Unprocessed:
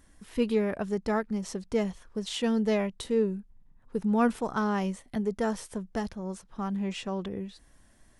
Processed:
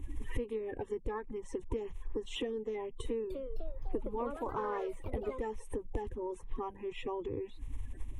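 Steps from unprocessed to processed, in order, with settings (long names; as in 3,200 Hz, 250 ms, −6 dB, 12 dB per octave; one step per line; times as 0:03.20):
spectral magnitudes quantised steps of 30 dB
spectral tilt −2.5 dB per octave
downward compressor 16 to 1, threshold −40 dBFS, peak gain reduction 23.5 dB
phaser with its sweep stopped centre 960 Hz, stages 8
0:03.04–0:05.55: delay with pitch and tempo change per echo 260 ms, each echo +3 semitones, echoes 3, each echo −6 dB
level +10.5 dB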